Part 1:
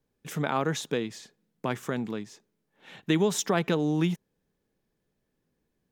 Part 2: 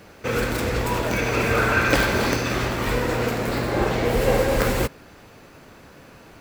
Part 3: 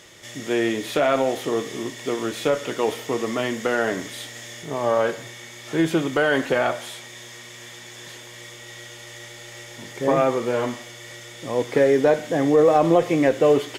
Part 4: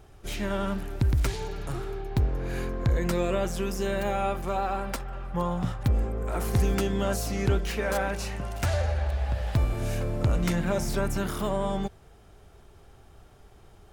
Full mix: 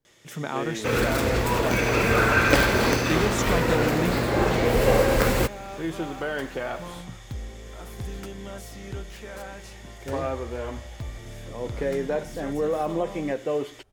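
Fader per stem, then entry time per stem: −2.5, 0.0, −10.0, −11.0 decibels; 0.00, 0.60, 0.05, 1.45 seconds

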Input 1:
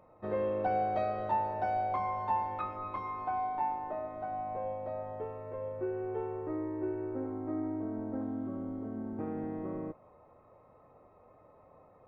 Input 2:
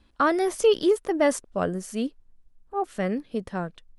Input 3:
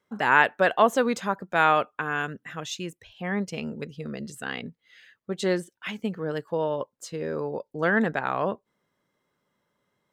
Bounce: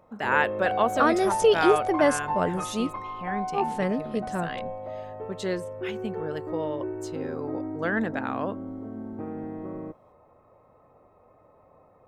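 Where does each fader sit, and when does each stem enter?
+2.0, 0.0, −4.5 decibels; 0.00, 0.80, 0.00 seconds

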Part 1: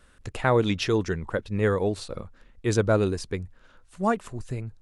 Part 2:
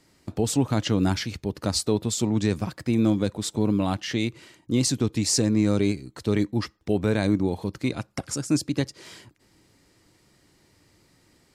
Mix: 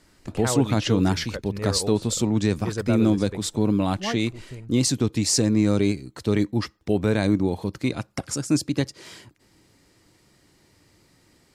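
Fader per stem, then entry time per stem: −6.5, +1.5 decibels; 0.00, 0.00 seconds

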